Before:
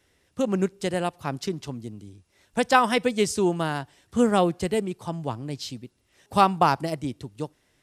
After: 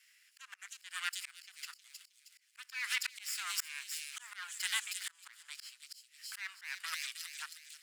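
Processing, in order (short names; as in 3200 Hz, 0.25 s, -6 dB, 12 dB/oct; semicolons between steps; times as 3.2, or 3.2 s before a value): minimum comb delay 0.41 ms; steep high-pass 1400 Hz 36 dB/oct; limiter -21 dBFS, peak gain reduction 9 dB; thin delay 0.315 s, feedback 38%, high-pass 4300 Hz, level -3 dB; auto swell 0.382 s; gain +4.5 dB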